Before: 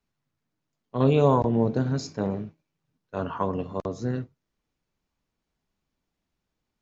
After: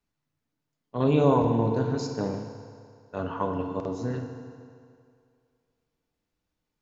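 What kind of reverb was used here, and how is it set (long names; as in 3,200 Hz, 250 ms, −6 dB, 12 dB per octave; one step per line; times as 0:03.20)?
feedback delay network reverb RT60 2.3 s, low-frequency decay 0.85×, high-frequency decay 0.85×, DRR 4 dB
level −2.5 dB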